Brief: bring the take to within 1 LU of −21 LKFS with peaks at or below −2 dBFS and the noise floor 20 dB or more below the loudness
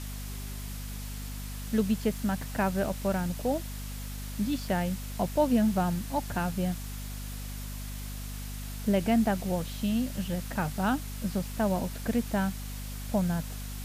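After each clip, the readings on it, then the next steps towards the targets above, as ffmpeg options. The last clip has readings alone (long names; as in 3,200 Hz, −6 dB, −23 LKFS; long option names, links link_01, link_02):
mains hum 50 Hz; hum harmonics up to 250 Hz; level of the hum −36 dBFS; background noise floor −38 dBFS; target noise floor −51 dBFS; integrated loudness −31.0 LKFS; sample peak −13.5 dBFS; target loudness −21.0 LKFS
→ -af "bandreject=frequency=50:width_type=h:width=4,bandreject=frequency=100:width_type=h:width=4,bandreject=frequency=150:width_type=h:width=4,bandreject=frequency=200:width_type=h:width=4,bandreject=frequency=250:width_type=h:width=4"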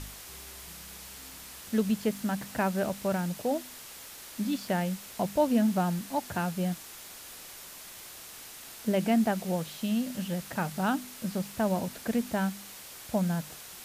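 mains hum none found; background noise floor −46 dBFS; target noise floor −51 dBFS
→ -af "afftdn=noise_reduction=6:noise_floor=-46"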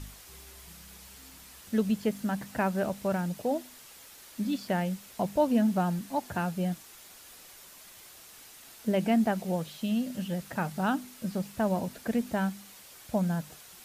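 background noise floor −51 dBFS; integrated loudness −30.5 LKFS; sample peak −14.0 dBFS; target loudness −21.0 LKFS
→ -af "volume=9.5dB"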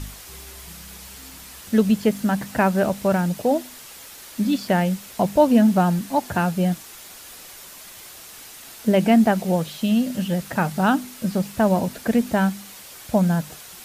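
integrated loudness −21.0 LKFS; sample peak −4.5 dBFS; background noise floor −42 dBFS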